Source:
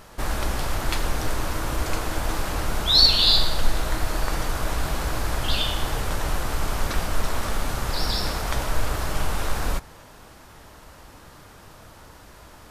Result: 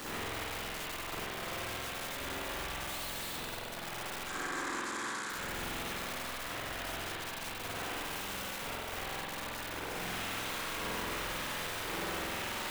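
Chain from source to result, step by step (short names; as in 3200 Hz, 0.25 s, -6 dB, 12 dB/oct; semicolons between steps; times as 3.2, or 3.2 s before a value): half-waves squared off; tone controls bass +12 dB, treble +7 dB; compressor 6:1, threshold -20 dBFS, peak gain reduction 21 dB; LFO high-pass saw up 0.93 Hz 370–1700 Hz; tube stage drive 36 dB, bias 0.25; wrapped overs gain 44 dB; 4.27–5.3 speaker cabinet 180–10000 Hz, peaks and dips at 320 Hz +6 dB, 650 Hz -7 dB, 1100 Hz +6 dB, 1600 Hz +8 dB, 2800 Hz -8 dB, 7200 Hz +8 dB; thin delay 0.193 s, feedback 56%, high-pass 3600 Hz, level -5.5 dB; spring tank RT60 1.8 s, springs 46 ms, chirp 50 ms, DRR -7.5 dB; gain +5 dB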